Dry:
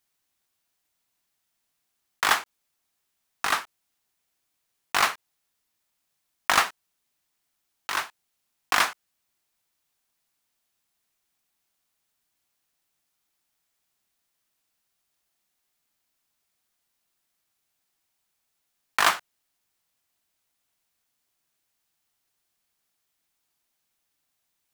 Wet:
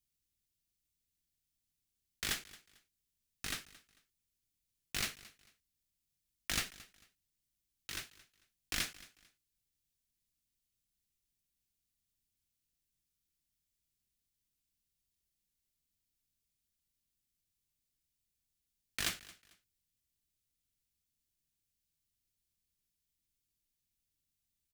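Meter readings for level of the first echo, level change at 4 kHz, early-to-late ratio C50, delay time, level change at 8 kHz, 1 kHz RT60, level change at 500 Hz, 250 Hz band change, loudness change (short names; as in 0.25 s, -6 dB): -20.0 dB, -10.5 dB, none, 0.223 s, -8.5 dB, none, -18.0 dB, -7.0 dB, -14.0 dB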